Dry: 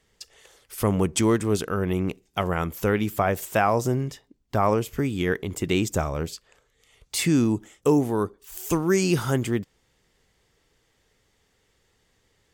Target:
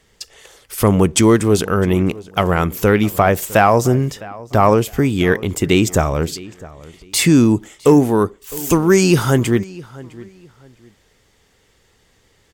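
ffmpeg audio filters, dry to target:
-filter_complex "[0:a]acontrast=54,asplit=2[s0][s1];[s1]adelay=658,lowpass=f=3700:p=1,volume=0.1,asplit=2[s2][s3];[s3]adelay=658,lowpass=f=3700:p=1,volume=0.27[s4];[s2][s4]amix=inputs=2:normalize=0[s5];[s0][s5]amix=inputs=2:normalize=0,volume=1.5"

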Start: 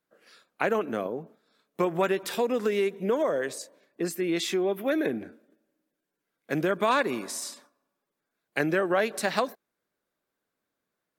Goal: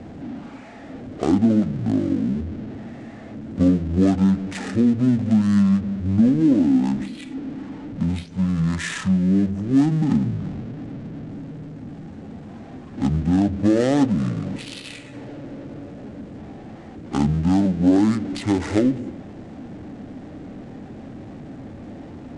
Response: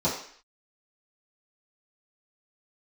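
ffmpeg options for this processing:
-filter_complex "[0:a]aeval=exprs='val(0)+0.5*0.0251*sgn(val(0))':c=same,adynamicsmooth=sensitivity=7:basefreq=1200,asplit=2[s0][s1];[1:a]atrim=start_sample=2205[s2];[s1][s2]afir=irnorm=-1:irlink=0,volume=0.0447[s3];[s0][s3]amix=inputs=2:normalize=0,asetrate=22050,aresample=44100,equalizer=f=250:t=o:w=1:g=8,equalizer=f=1000:t=o:w=1:g=-8,equalizer=f=8000:t=o:w=1:g=10,volume=1.26"

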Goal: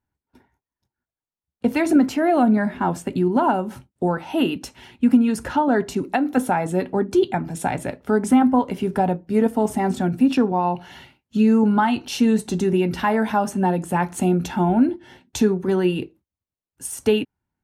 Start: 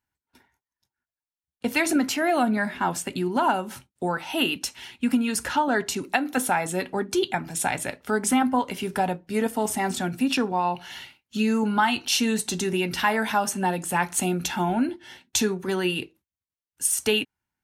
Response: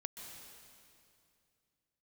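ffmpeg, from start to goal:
-af "tiltshelf=f=1200:g=8"

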